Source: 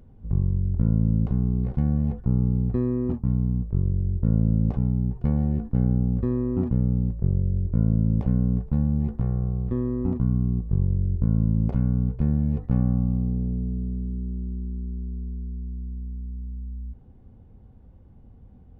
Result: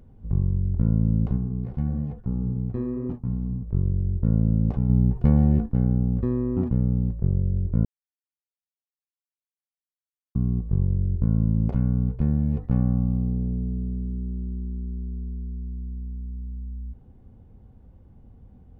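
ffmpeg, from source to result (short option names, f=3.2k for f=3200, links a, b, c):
-filter_complex "[0:a]asplit=3[a][b][c];[a]afade=t=out:st=1.36:d=0.02[d];[b]flanger=delay=6.5:depth=6.2:regen=-51:speed=1.9:shape=sinusoidal,afade=t=in:st=1.36:d=0.02,afade=t=out:st=3.66:d=0.02[e];[c]afade=t=in:st=3.66:d=0.02[f];[d][e][f]amix=inputs=3:normalize=0,asettb=1/sr,asplit=3[g][h][i];[g]atrim=end=4.894[j];[h]atrim=start=4.89:end=5.66,asetpts=PTS-STARTPTS,afade=t=in:d=0.004:c=qsin,afade=t=out:st=0.766:d=0.004:c=qsin,acontrast=30[k];[i]atrim=start=5.656[l];[j][k]acrossfade=d=0.004:c1=hsin:c2=qsin[m];[m][l]acrossfade=d=0.004:c1=qsin:c2=hsin,asplit=3[n][o][p];[n]atrim=end=7.85,asetpts=PTS-STARTPTS,afade=t=out:st=7.846:d=0.004:c=hsin[q];[o]atrim=start=7.85:end=10.35,asetpts=PTS-STARTPTS,volume=0[r];[p]atrim=start=10.35,asetpts=PTS-STARTPTS,afade=t=in:d=0.004:c=hsin[s];[q][r][s]concat=n=3:v=0:a=1"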